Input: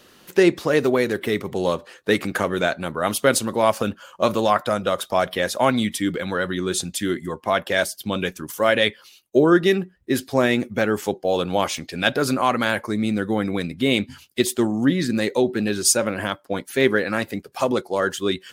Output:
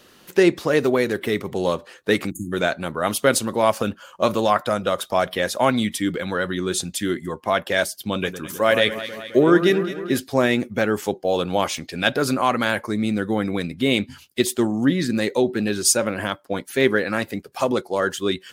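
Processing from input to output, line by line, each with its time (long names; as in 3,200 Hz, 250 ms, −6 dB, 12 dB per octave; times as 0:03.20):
0:02.31–0:02.52: time-frequency box erased 360–6,400 Hz
0:08.13–0:10.18: delay that swaps between a low-pass and a high-pass 106 ms, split 1,600 Hz, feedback 77%, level −10 dB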